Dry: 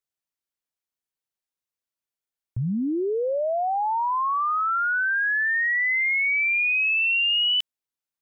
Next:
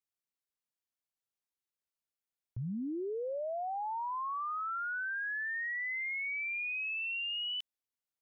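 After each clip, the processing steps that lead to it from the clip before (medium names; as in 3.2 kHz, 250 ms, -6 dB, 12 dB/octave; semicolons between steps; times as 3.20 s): peak limiter -27.5 dBFS, peak gain reduction 9 dB; trim -6 dB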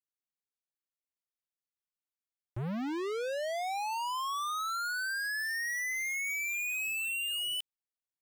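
waveshaping leveller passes 5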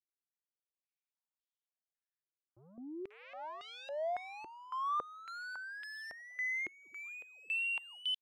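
bands offset in time lows, highs 540 ms, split 530 Hz; wow and flutter 25 cents; step-sequenced band-pass 3.6 Hz 350–3300 Hz; trim +3 dB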